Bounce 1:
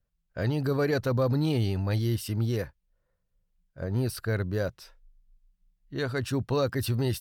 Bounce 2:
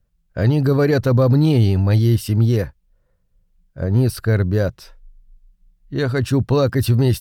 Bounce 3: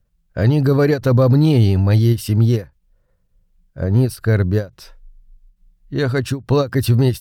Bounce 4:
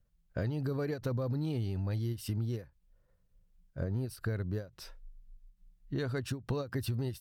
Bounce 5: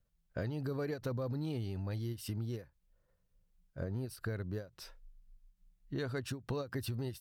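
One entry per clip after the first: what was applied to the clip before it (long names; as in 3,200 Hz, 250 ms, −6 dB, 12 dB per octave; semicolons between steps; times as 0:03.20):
low-shelf EQ 410 Hz +6.5 dB; level +6.5 dB
every ending faded ahead of time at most 250 dB per second; level +1.5 dB
downward compressor 6 to 1, threshold −24 dBFS, peak gain reduction 14.5 dB; level −7.5 dB
low-shelf EQ 200 Hz −4.5 dB; level −1.5 dB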